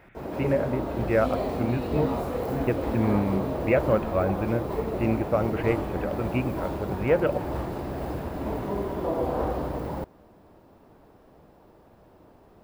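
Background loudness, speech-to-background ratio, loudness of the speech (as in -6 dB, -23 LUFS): -30.5 LUFS, 2.5 dB, -28.0 LUFS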